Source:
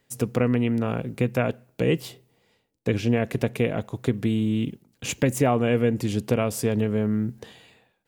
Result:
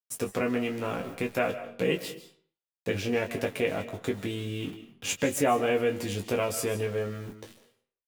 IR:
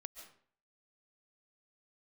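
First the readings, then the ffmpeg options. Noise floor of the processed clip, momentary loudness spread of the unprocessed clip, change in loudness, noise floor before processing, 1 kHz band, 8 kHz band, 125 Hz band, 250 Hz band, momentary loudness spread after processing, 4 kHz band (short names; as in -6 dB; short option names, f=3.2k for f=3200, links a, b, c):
under -85 dBFS, 7 LU, -5.0 dB, -71 dBFS, -0.5 dB, 0.0 dB, -11.0 dB, -8.5 dB, 11 LU, 0.0 dB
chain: -filter_complex "[0:a]lowshelf=f=350:g=-9,aeval=exprs='val(0)*gte(abs(val(0)),0.0075)':c=same,asplit=2[a][b];[b]adelay=21,volume=-6dB[c];[a][c]amix=inputs=2:normalize=0,asplit=2[d][e];[1:a]atrim=start_sample=2205,adelay=11[f];[e][f]afir=irnorm=-1:irlink=0,volume=1dB[g];[d][g]amix=inputs=2:normalize=0,volume=-2.5dB"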